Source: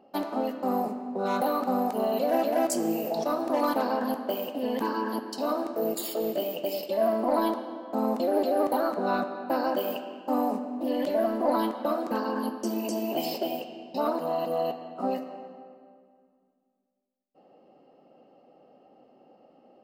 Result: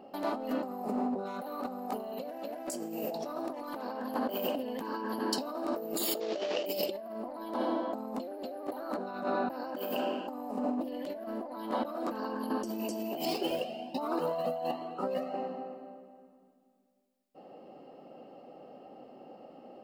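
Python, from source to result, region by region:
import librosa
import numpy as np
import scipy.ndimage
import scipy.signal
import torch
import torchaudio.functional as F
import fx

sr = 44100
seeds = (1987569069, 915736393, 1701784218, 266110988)

y = fx.chain(x, sr, fx.cvsd(bps=32000),
    fx.highpass(hz=380.0, slope=12), at=(6.2, 6.66))
y = fx.chain(y, sr, fx.median_filter(points=5),
    fx.highpass(hz=44.0, slope=12),
    fx.comb_cascade(direction='rising', hz=1.3), at=(13.25, 15.34))
y = fx.notch(y, sr, hz=6200.0, q=25.0)
y = fx.over_compress(y, sr, threshold_db=-36.0, ratio=-1.0)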